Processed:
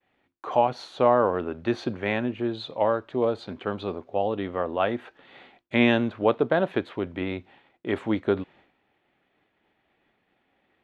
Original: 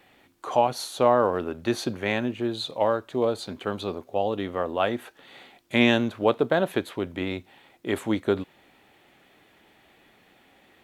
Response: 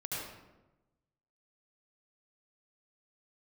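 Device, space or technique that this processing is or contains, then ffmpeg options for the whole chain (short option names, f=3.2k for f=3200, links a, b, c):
hearing-loss simulation: -af "lowpass=3k,agate=range=-33dB:threshold=-50dB:ratio=3:detection=peak"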